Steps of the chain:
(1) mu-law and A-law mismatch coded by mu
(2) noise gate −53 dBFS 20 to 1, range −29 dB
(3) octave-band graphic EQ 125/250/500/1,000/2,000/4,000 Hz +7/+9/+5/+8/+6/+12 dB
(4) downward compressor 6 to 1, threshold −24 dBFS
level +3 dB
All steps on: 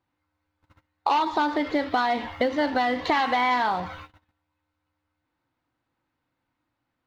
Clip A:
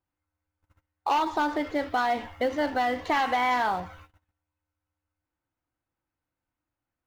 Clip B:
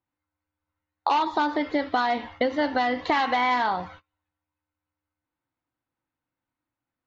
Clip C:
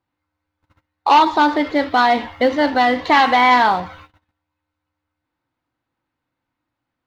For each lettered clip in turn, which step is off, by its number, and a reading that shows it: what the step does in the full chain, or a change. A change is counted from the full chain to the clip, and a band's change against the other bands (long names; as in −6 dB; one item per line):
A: 3, 4 kHz band −2.0 dB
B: 1, distortion level −23 dB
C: 4, average gain reduction 7.0 dB